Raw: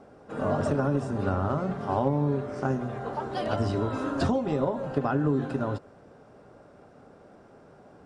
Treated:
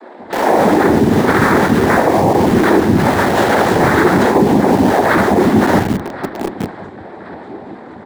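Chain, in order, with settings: dynamic bell 430 Hz, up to -5 dB, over -42 dBFS, Q 2.9; chord resonator F2 minor, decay 0.46 s; feedback delay 1074 ms, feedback 35%, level -16.5 dB; Chebyshev shaper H 7 -31 dB, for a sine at -27 dBFS; cabinet simulation 130–3900 Hz, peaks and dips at 160 Hz -10 dB, 260 Hz +5 dB, 440 Hz +10 dB, 930 Hz -5 dB, 1.4 kHz +6 dB; comb 6.9 ms, depth 34%; noise-vocoded speech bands 6; bands offset in time highs, lows 170 ms, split 320 Hz; in parallel at -7 dB: bit crusher 8-bit; on the sum: frequency shift -18 Hz; reverse; compression, threshold -37 dBFS, peak gain reduction 8 dB; reverse; loudness maximiser +32.5 dB; trim -1 dB

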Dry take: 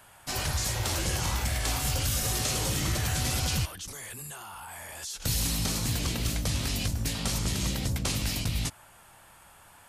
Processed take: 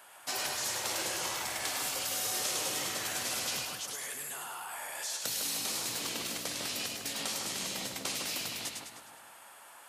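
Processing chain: compression 3:1, threshold -31 dBFS, peak gain reduction 5.5 dB; high-pass 390 Hz 12 dB/octave; two-band feedback delay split 1.8 kHz, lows 154 ms, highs 103 ms, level -4 dB

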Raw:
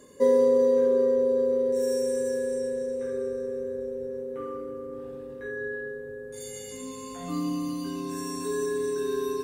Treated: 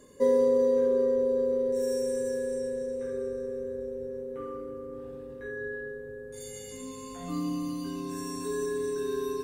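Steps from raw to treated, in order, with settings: bass shelf 84 Hz +9 dB; trim -3 dB

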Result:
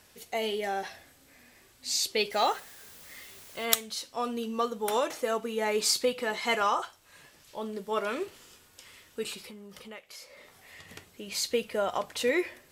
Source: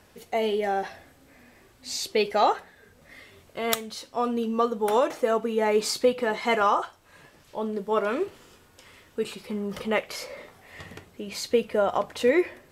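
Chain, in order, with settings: treble shelf 2.1 kHz +11.5 dB; 2.31–3.64 s: added noise white -44 dBFS; 9.48–10.89 s: compression 3:1, threshold -41 dBFS, peak gain reduction 18 dB; trim -7 dB

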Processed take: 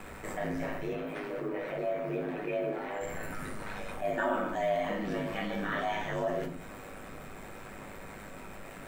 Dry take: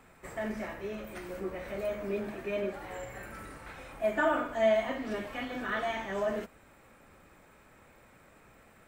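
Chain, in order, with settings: 0.93–3.01 s: three-band isolator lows -21 dB, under 190 Hz, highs -13 dB, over 3.8 kHz; companded quantiser 8-bit; ring modulator 51 Hz; simulated room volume 160 m³, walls furnished, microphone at 1.1 m; level flattener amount 50%; trim -4.5 dB

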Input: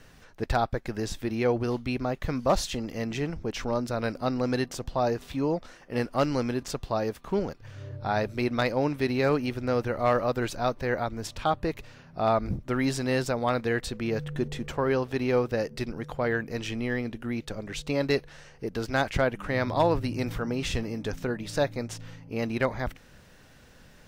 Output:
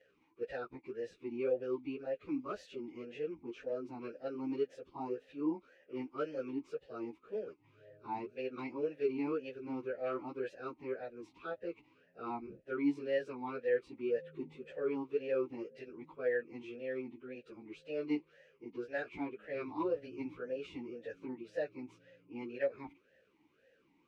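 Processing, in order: frequency-domain pitch shifter +1 st; talking filter e-u 1.9 Hz; trim +1 dB

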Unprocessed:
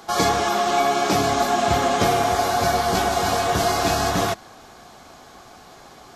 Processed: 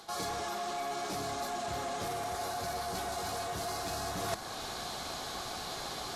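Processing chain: saturation -17 dBFS, distortion -14 dB; dynamic bell 3.5 kHz, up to -6 dB, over -45 dBFS, Q 1.3; reverse; compression 6:1, threshold -35 dBFS, peak gain reduction 14 dB; reverse; fifteen-band graphic EQ 250 Hz -3 dB, 4 kHz +8 dB, 10 kHz +7 dB; gain riding within 4 dB 0.5 s

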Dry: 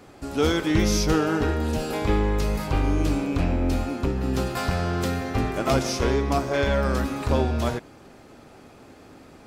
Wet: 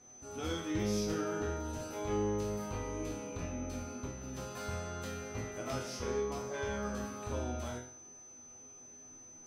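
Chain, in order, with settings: whistle 6.1 kHz -43 dBFS; chord resonator E2 major, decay 0.51 s

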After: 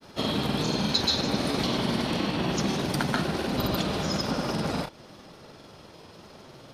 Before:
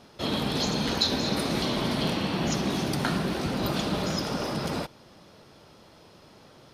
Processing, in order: in parallel at -0.5 dB: compression, threshold -38 dBFS, peak gain reduction 17 dB; on the sum: granulator, pitch spread up and down by 0 st

